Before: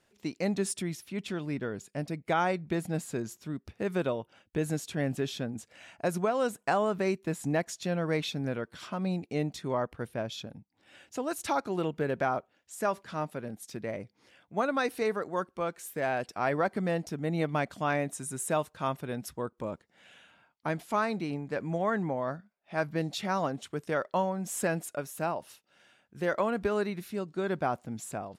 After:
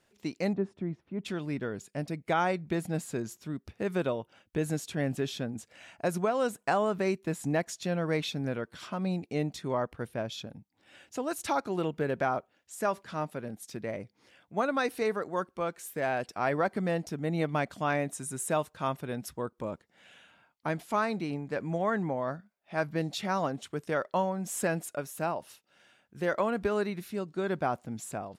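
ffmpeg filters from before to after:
ffmpeg -i in.wav -filter_complex "[0:a]asettb=1/sr,asplit=3[link_01][link_02][link_03];[link_01]atrim=end=0.534[link_04];[link_02]atrim=start=0.53:end=1.25,asetpts=PTS-STARTPTS,afade=type=in:duration=0.004:curve=qsin,afade=type=out:start_time=0.716:duration=0.004:curve=qsin,lowpass=1000[link_05];[link_03]atrim=start=1.246[link_06];[link_04][link_05]acrossfade=duration=0.004:curve1=hsin:curve2=qsin[link_07];[link_07][link_06]acrossfade=duration=0.004:curve1=qsin:curve2=hsin" out.wav

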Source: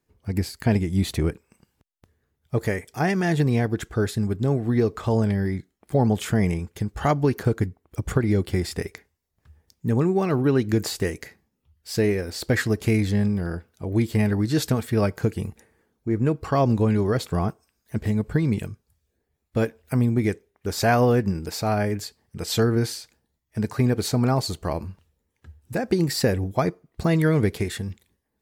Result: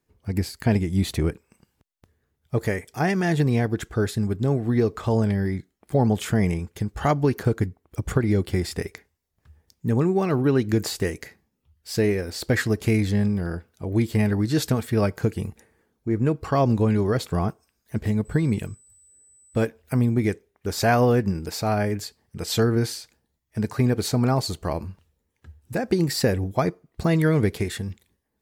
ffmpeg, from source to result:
ffmpeg -i in.wav -filter_complex "[0:a]asettb=1/sr,asplit=3[link_01][link_02][link_03];[link_01]atrim=end=18.254[link_04];[link_02]atrim=start=18.25:end=19.66,asetpts=PTS-STARTPTS,afade=type=in:duration=0.004:curve=qsin,afade=type=out:start_time=1.406:duration=0.004:curve=qsin,aeval=exprs='val(0)+0.00224*sin(2*PI*8000*n/s)':channel_layout=same[link_05];[link_03]atrim=start=19.656[link_06];[link_04][link_05]acrossfade=duration=0.004:curve1=hsin:curve2=qsin[link_07];[link_07][link_06]acrossfade=duration=0.004:curve1=qsin:curve2=hsin" out.wav

